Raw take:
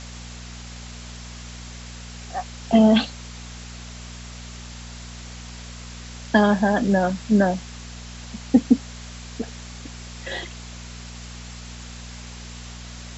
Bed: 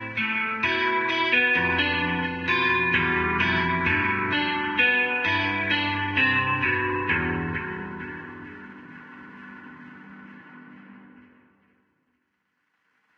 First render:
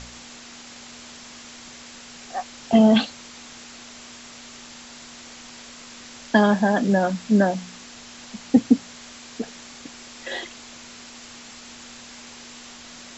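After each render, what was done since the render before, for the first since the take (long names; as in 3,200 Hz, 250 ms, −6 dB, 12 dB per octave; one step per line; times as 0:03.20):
hum removal 60 Hz, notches 3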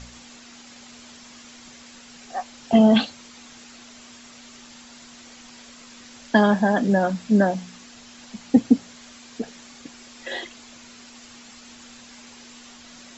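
broadband denoise 6 dB, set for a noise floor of −43 dBFS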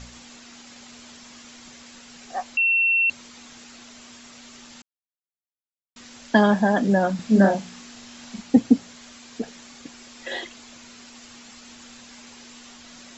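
0:02.57–0:03.10: beep over 2,710 Hz −16.5 dBFS
0:04.82–0:05.96: silence
0:07.15–0:08.42: double-tracking delay 41 ms −3 dB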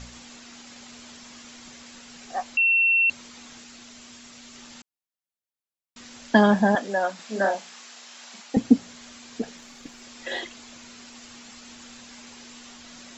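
0:03.61–0:04.56: parametric band 840 Hz −3 dB 2.7 octaves
0:06.75–0:08.57: high-pass filter 580 Hz
0:09.57–0:10.02: gain on one half-wave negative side −3 dB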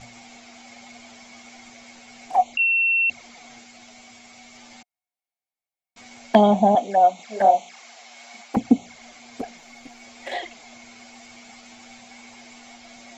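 hollow resonant body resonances 730/2,200 Hz, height 16 dB, ringing for 30 ms
flanger swept by the level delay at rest 11.6 ms, full sweep at −16 dBFS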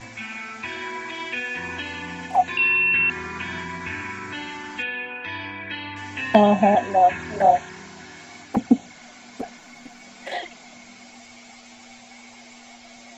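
mix in bed −8.5 dB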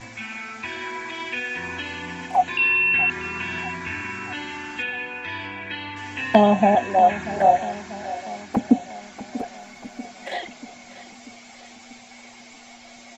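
repeating echo 639 ms, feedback 58%, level −15 dB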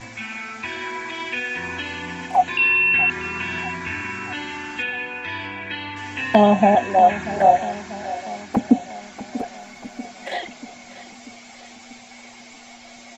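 level +2 dB
brickwall limiter −3 dBFS, peak gain reduction 2.5 dB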